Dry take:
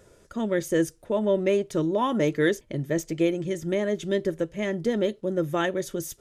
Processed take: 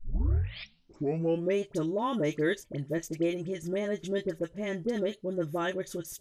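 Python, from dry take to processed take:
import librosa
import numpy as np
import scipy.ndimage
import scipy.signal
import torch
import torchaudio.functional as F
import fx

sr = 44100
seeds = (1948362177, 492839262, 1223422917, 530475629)

y = fx.tape_start_head(x, sr, length_s=1.54)
y = fx.dispersion(y, sr, late='highs', ms=48.0, hz=1300.0)
y = y * librosa.db_to_amplitude(-5.5)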